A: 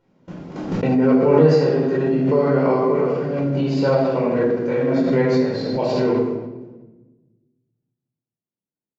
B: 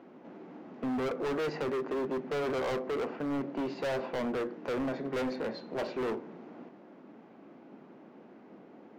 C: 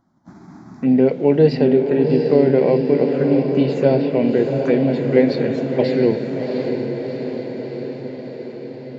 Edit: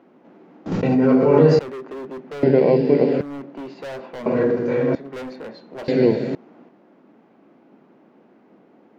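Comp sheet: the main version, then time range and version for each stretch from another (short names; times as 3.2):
B
0.66–1.59 from A
2.43–3.21 from C
4.26–4.95 from A
5.88–6.35 from C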